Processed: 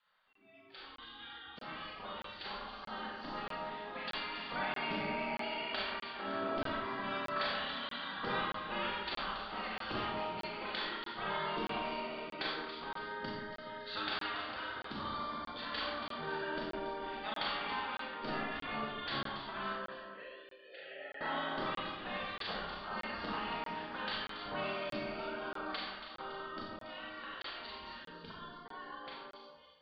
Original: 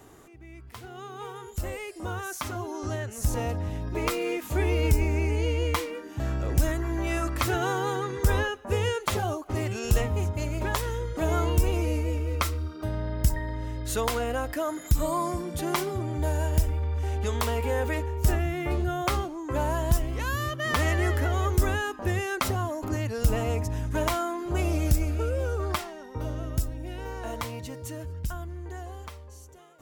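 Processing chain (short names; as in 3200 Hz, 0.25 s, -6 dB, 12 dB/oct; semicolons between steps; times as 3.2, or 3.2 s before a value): in parallel at -2 dB: compressor, threshold -35 dBFS, peak gain reduction 18 dB; on the sum: vibrato 1.2 Hz 5.6 cents; spectral gate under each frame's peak -15 dB weak; 19.72–21.21 vowel filter e; on a send: echo with dull and thin repeats by turns 0.14 s, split 2000 Hz, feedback 68%, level -6 dB; on the sum: spectral noise reduction 15 dB; rippled Chebyshev low-pass 4700 Hz, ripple 6 dB; Schroeder reverb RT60 0.68 s, combs from 29 ms, DRR -2.5 dB; crackling interface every 0.63 s, samples 1024, zero, from 0.33; gain -3.5 dB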